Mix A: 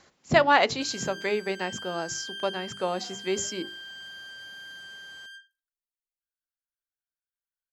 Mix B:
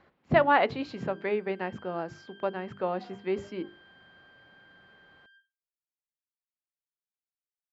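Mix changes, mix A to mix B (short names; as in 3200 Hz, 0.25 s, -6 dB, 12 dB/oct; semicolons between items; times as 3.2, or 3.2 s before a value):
background -10.0 dB; master: add air absorption 470 m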